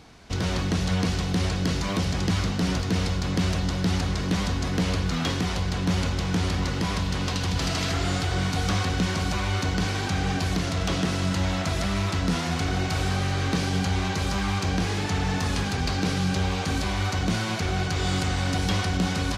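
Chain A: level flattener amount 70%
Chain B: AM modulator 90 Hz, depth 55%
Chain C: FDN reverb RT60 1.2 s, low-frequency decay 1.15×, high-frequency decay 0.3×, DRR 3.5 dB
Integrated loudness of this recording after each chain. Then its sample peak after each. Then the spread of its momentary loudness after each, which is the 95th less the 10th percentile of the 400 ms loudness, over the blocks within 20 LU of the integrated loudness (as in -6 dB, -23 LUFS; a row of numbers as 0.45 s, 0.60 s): -22.5 LUFS, -29.0 LUFS, -23.0 LUFS; -11.0 dBFS, -15.5 dBFS, -10.0 dBFS; 1 LU, 2 LU, 3 LU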